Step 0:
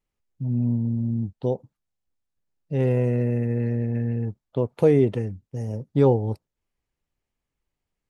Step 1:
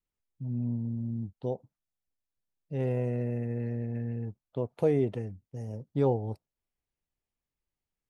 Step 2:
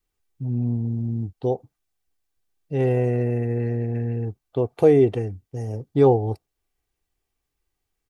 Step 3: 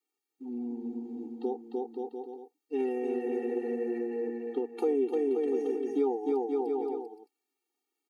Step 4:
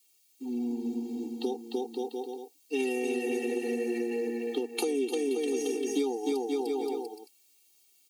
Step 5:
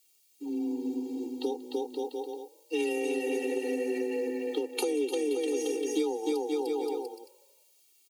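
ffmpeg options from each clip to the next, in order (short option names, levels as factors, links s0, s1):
-af "adynamicequalizer=threshold=0.00891:dfrequency=690:dqfactor=3.9:tfrequency=690:tqfactor=3.9:attack=5:release=100:ratio=0.375:range=3:mode=boostabove:tftype=bell,volume=0.376"
-af "aecho=1:1:2.6:0.45,volume=2.82"
-filter_complex "[0:a]aecho=1:1:300|525|693.8|820.3|915.2:0.631|0.398|0.251|0.158|0.1,acrossover=split=130[s0][s1];[s1]acompressor=threshold=0.0631:ratio=4[s2];[s0][s2]amix=inputs=2:normalize=0,afftfilt=real='re*eq(mod(floor(b*sr/1024/240),2),1)':imag='im*eq(mod(floor(b*sr/1024/240),2),1)':win_size=1024:overlap=0.75,volume=0.794"
-filter_complex "[0:a]acrossover=split=250|3000[s0][s1][s2];[s1]acompressor=threshold=0.02:ratio=6[s3];[s0][s3][s2]amix=inputs=3:normalize=0,acrossover=split=130[s4][s5];[s5]aexciter=amount=7.8:drive=2.9:freq=2300[s6];[s4][s6]amix=inputs=2:normalize=0,volume=1.58"
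-filter_complex "[0:a]afreqshift=23,asplit=4[s0][s1][s2][s3];[s1]adelay=186,afreqshift=37,volume=0.0631[s4];[s2]adelay=372,afreqshift=74,volume=0.0285[s5];[s3]adelay=558,afreqshift=111,volume=0.0127[s6];[s0][s4][s5][s6]amix=inputs=4:normalize=0"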